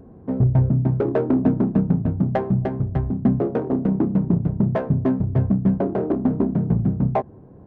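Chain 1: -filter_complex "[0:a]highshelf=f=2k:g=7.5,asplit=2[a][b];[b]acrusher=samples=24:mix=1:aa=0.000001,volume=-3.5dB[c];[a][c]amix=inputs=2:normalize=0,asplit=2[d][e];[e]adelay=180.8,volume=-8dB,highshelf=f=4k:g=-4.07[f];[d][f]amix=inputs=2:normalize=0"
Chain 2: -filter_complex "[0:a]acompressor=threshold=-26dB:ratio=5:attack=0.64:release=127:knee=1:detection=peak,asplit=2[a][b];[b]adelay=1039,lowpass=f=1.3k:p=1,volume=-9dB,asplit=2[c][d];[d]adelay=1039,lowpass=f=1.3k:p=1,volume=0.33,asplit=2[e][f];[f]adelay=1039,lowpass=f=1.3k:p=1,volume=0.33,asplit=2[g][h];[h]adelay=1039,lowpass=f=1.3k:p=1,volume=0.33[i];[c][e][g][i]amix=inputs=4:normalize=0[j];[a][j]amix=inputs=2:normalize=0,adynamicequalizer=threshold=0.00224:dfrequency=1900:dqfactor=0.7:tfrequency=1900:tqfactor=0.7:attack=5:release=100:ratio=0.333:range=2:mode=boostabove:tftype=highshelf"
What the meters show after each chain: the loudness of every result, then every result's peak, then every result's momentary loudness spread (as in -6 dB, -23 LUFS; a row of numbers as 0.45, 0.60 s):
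-16.0, -30.5 LUFS; -2.5, -19.5 dBFS; 5, 1 LU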